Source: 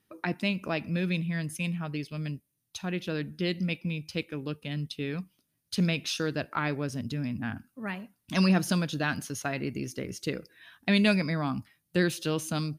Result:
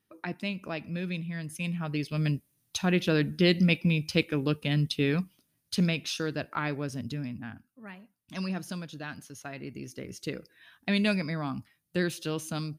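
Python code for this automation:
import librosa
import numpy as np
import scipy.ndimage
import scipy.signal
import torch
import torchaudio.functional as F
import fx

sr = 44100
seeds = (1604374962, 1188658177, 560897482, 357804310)

y = fx.gain(x, sr, db=fx.line((1.41, -4.5), (2.28, 7.0), (5.1, 7.0), (6.04, -1.5), (7.14, -1.5), (7.65, -10.0), (9.31, -10.0), (10.24, -3.0)))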